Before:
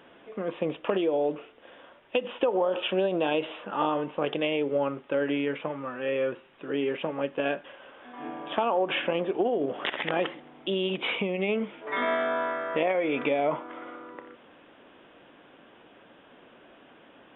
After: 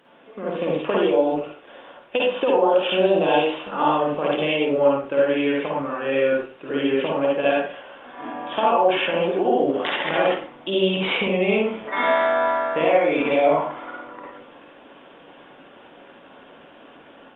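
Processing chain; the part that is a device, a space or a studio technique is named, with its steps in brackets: far-field microphone of a smart speaker (reverb RT60 0.40 s, pre-delay 48 ms, DRR -4 dB; HPF 130 Hz 6 dB/oct; AGC gain up to 6 dB; gain -2.5 dB; Opus 32 kbps 48000 Hz)

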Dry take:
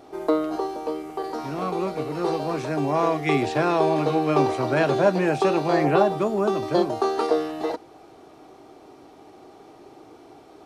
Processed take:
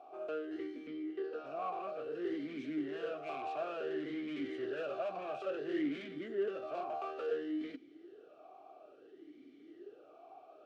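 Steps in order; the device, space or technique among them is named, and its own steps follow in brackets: 0.87–1.46 Chebyshev low-pass 4200 Hz, order 2; talk box (tube stage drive 29 dB, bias 0.4; vowel sweep a-i 0.58 Hz); gain +2 dB

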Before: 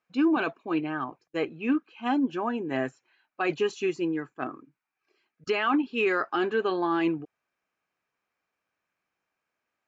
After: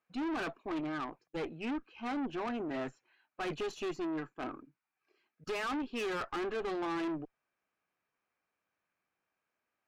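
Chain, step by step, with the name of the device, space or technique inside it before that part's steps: tube preamp driven hard (tube stage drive 33 dB, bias 0.55; high shelf 4100 Hz -6 dB)

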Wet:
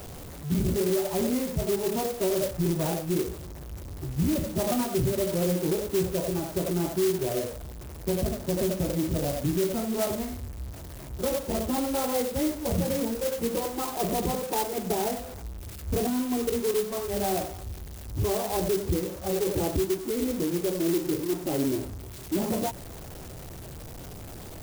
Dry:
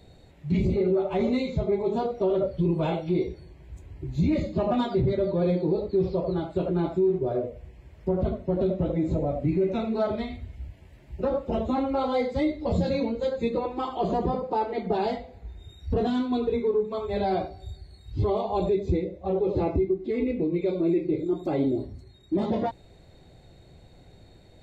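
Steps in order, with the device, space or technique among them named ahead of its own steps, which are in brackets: early CD player with a faulty converter (zero-crossing step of -33.5 dBFS; clock jitter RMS 0.11 ms); gain -3 dB

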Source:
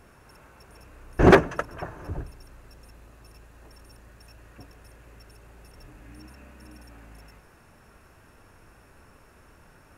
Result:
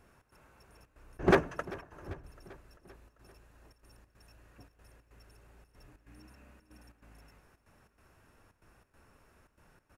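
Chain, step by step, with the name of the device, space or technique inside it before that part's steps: trance gate with a delay (step gate "xx.xxxxx." 141 bpm -12 dB; feedback echo 0.393 s, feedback 58%, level -19.5 dB); gain -9 dB

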